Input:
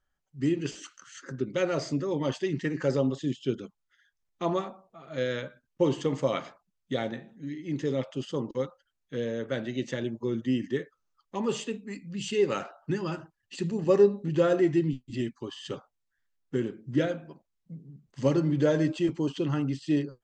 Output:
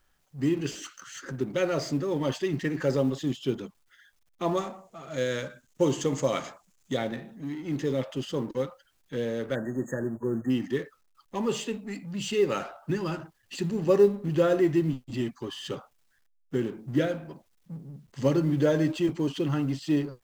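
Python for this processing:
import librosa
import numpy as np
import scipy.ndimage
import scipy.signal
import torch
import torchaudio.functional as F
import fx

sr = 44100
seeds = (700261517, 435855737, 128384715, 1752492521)

y = fx.law_mismatch(x, sr, coded='mu')
y = fx.peak_eq(y, sr, hz=6900.0, db=10.5, octaves=0.52, at=(4.57, 6.97))
y = fx.spec_erase(y, sr, start_s=9.55, length_s=0.95, low_hz=1900.0, high_hz=6400.0)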